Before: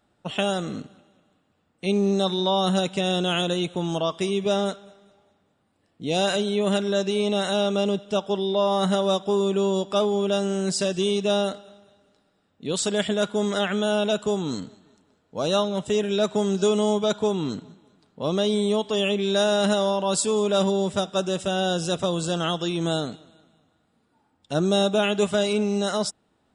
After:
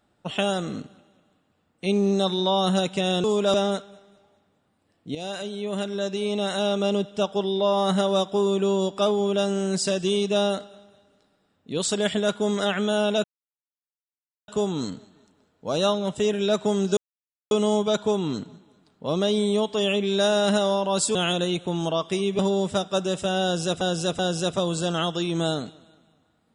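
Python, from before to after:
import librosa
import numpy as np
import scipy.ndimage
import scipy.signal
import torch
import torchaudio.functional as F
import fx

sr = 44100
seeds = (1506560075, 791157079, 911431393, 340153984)

y = fx.edit(x, sr, fx.swap(start_s=3.24, length_s=1.24, other_s=20.31, other_length_s=0.3),
    fx.fade_in_from(start_s=6.09, length_s=1.82, floor_db=-12.0),
    fx.insert_silence(at_s=14.18, length_s=1.24),
    fx.insert_silence(at_s=16.67, length_s=0.54),
    fx.repeat(start_s=21.65, length_s=0.38, count=3), tone=tone)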